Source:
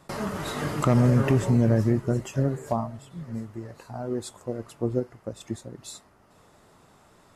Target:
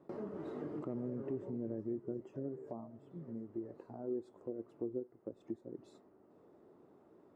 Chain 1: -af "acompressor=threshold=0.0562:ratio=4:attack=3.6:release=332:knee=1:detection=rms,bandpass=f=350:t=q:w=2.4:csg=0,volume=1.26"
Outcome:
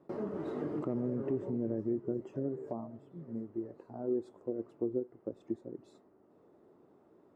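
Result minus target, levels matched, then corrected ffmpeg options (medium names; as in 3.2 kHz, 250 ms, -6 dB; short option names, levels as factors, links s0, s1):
compression: peak gain reduction -6 dB
-af "acompressor=threshold=0.0224:ratio=4:attack=3.6:release=332:knee=1:detection=rms,bandpass=f=350:t=q:w=2.4:csg=0,volume=1.26"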